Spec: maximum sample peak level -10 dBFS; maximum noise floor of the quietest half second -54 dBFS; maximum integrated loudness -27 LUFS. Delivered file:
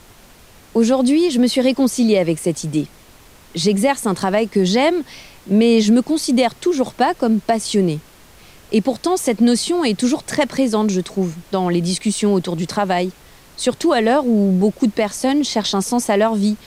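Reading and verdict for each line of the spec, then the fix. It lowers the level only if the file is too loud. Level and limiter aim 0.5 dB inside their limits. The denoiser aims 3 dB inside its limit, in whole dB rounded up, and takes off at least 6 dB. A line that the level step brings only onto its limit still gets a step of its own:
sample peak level -5.0 dBFS: fail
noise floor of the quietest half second -45 dBFS: fail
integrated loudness -17.5 LUFS: fail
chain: trim -10 dB

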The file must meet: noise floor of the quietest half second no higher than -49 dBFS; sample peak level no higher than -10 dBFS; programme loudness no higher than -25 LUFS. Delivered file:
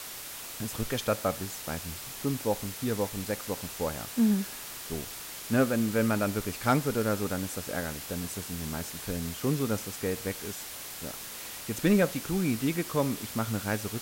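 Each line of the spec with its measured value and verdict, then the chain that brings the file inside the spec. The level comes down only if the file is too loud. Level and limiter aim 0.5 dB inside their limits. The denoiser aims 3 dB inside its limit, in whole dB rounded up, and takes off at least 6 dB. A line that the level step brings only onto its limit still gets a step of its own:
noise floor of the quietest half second -41 dBFS: fail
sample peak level -13.5 dBFS: pass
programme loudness -31.0 LUFS: pass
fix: noise reduction 11 dB, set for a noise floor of -41 dBFS

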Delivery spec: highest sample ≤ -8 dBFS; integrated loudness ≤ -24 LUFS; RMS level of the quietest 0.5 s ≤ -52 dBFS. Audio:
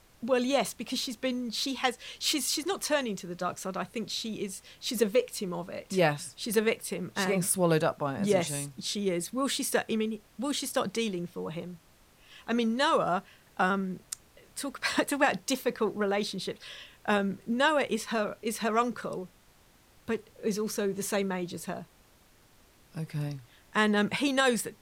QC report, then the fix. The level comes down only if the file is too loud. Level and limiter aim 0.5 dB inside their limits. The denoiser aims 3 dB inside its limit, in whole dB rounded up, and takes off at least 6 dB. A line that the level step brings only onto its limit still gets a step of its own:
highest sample -10.0 dBFS: pass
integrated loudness -30.0 LUFS: pass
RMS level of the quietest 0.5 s -61 dBFS: pass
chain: none needed

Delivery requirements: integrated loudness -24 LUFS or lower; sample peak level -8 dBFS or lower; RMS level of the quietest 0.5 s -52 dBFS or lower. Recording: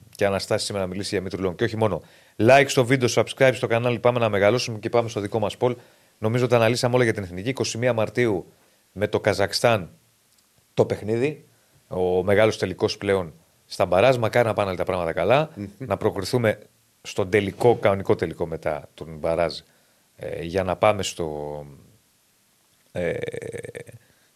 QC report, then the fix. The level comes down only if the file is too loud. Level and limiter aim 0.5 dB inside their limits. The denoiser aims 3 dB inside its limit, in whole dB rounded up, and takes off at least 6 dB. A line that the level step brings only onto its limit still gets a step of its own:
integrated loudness -22.5 LUFS: fail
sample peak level -4.5 dBFS: fail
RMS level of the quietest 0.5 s -63 dBFS: pass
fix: trim -2 dB; peak limiter -8.5 dBFS

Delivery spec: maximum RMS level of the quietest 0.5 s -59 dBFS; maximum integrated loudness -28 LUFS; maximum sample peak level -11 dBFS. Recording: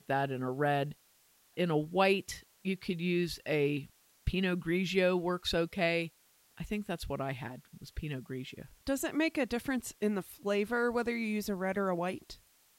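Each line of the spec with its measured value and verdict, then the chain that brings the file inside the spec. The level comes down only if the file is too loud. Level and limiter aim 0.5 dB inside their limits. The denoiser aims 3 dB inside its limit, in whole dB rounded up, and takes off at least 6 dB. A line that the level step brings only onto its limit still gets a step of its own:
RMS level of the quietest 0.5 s -67 dBFS: pass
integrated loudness -33.5 LUFS: pass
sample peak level -15.5 dBFS: pass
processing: none needed

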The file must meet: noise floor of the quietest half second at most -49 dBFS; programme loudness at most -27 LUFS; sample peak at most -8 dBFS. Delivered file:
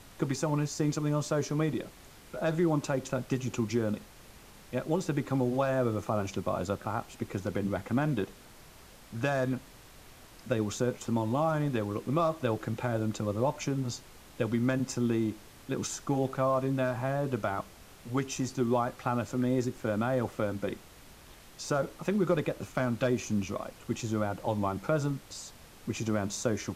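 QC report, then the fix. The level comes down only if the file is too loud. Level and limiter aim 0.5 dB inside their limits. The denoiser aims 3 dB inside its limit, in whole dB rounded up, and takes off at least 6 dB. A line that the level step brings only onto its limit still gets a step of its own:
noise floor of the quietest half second -53 dBFS: pass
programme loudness -31.5 LUFS: pass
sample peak -13.5 dBFS: pass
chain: none needed

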